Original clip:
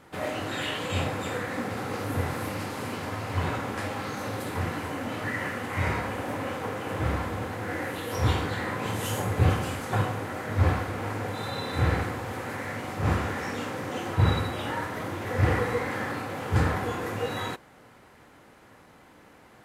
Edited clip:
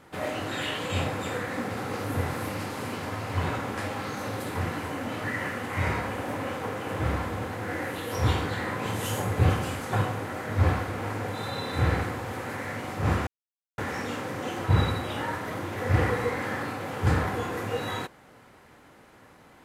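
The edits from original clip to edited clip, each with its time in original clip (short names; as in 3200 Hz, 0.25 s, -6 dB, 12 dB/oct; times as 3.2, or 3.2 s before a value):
13.27 insert silence 0.51 s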